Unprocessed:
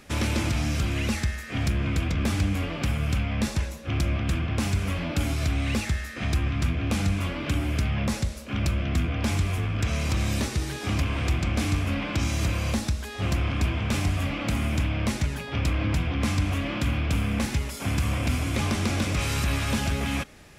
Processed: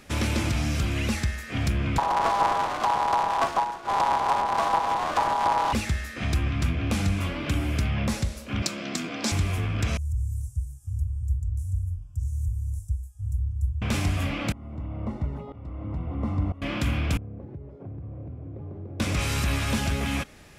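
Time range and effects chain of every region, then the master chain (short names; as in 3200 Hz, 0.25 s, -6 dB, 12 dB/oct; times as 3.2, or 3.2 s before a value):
1.98–5.73 half-waves squared off + ring modulator 900 Hz + air absorption 53 m
8.62–9.32 HPF 200 Hz 24 dB/oct + band shelf 5700 Hz +9 dB 1.3 oct
9.97–13.82 inverse Chebyshev band-stop 200–4400 Hz + high shelf 4600 Hz -12 dB
14.52–16.62 polynomial smoothing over 65 samples + tremolo saw up 1 Hz, depth 90%
17.17–19 Chebyshev band-pass 100–460 Hz + bell 230 Hz -14.5 dB 0.29 oct + compressor 2.5:1, threshold -38 dBFS
whole clip: dry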